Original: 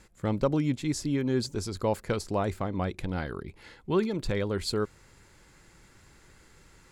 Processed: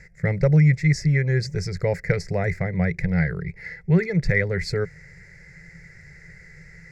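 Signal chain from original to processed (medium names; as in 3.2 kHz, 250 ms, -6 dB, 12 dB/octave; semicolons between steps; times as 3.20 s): FFT filter 110 Hz 0 dB, 170 Hz +11 dB, 240 Hz -25 dB, 450 Hz -2 dB, 710 Hz -7 dB, 1.1 kHz -20 dB, 2 kHz +13 dB, 3.1 kHz -24 dB, 5.2 kHz -2 dB, 9.4 kHz -17 dB; trim +8.5 dB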